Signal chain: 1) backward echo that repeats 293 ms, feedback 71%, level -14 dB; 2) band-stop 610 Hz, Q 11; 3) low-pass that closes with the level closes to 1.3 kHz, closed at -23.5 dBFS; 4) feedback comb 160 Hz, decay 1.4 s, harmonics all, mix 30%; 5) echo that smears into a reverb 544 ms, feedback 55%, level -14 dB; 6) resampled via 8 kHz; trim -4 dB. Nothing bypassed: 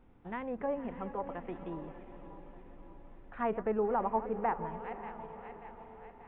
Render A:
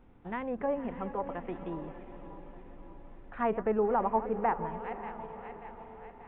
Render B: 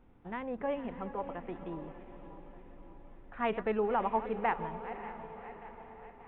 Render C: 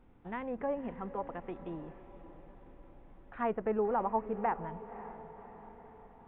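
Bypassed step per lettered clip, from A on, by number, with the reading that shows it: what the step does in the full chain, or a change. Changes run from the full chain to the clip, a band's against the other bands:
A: 4, loudness change +3.0 LU; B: 3, 2 kHz band +4.5 dB; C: 1, momentary loudness spread change +1 LU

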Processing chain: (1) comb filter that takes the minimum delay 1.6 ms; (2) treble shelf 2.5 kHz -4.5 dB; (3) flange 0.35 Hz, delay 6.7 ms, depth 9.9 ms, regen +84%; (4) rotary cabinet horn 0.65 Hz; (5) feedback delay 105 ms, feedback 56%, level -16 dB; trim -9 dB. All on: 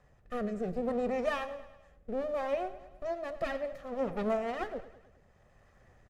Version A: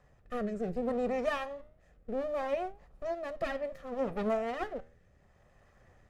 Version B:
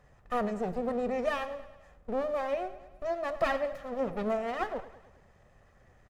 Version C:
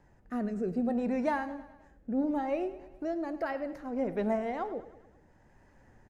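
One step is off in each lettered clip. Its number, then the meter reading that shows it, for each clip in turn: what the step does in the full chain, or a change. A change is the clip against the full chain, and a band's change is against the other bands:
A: 5, echo-to-direct -14.5 dB to none; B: 4, 1 kHz band +2.0 dB; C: 1, 250 Hz band +6.0 dB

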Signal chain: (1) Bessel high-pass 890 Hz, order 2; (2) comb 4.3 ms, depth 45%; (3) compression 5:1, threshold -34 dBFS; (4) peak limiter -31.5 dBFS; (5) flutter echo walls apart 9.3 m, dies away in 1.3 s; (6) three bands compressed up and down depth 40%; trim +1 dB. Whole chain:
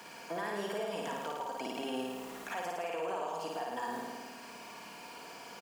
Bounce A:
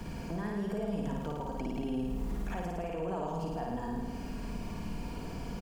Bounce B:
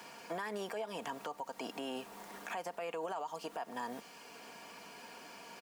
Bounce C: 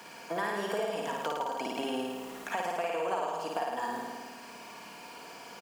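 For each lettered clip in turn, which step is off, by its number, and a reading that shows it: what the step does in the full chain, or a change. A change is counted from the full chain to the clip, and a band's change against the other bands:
1, 125 Hz band +21.0 dB; 5, loudness change -4.0 LU; 4, crest factor change +1.5 dB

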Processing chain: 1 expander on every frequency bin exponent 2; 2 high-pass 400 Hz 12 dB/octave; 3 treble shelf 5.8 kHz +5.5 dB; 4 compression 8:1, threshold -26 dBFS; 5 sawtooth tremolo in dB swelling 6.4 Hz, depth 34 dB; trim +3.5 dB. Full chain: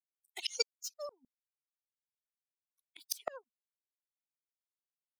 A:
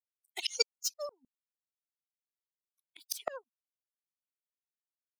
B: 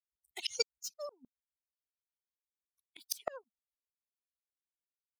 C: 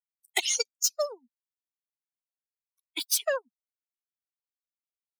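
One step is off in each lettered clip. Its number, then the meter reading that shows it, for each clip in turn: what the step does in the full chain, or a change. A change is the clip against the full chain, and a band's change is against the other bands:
4, mean gain reduction 3.5 dB; 2, 250 Hz band +4.5 dB; 5, momentary loudness spread change -7 LU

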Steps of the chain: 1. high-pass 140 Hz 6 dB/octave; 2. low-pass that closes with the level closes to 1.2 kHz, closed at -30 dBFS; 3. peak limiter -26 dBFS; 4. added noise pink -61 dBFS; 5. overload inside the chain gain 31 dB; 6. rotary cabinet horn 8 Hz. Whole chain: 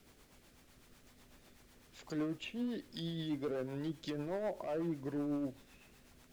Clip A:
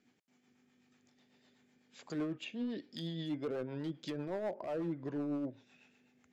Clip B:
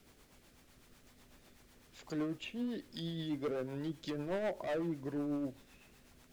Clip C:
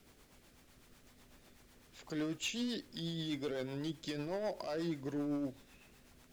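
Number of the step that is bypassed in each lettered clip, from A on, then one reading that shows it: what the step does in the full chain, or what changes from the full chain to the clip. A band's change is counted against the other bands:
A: 4, momentary loudness spread change -1 LU; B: 3, 2 kHz band +2.5 dB; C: 2, 8 kHz band +10.5 dB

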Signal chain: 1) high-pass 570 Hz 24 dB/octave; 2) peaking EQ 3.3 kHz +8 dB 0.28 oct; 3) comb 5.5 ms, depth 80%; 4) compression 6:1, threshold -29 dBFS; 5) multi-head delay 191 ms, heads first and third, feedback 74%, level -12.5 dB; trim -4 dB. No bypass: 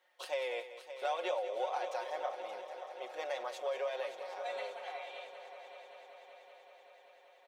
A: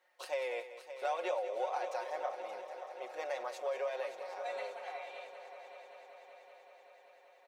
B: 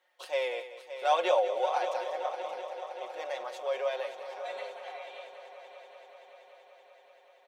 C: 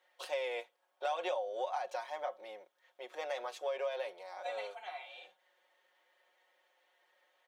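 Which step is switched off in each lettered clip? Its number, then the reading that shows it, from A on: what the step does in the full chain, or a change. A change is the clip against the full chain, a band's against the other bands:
2, 4 kHz band -4.5 dB; 4, mean gain reduction 2.5 dB; 5, echo-to-direct -6.0 dB to none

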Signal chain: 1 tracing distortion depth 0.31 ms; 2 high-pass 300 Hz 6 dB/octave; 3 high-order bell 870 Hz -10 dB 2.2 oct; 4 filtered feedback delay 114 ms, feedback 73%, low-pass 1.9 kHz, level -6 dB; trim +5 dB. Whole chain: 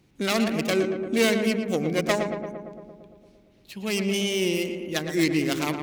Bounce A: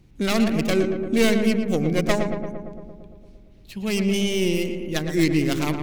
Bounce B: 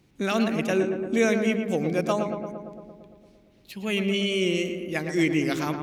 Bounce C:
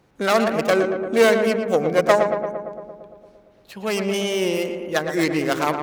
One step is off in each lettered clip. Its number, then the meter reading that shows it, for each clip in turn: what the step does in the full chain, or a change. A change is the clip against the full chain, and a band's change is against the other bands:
2, crest factor change -2.0 dB; 1, crest factor change -2.0 dB; 3, loudness change +4.5 LU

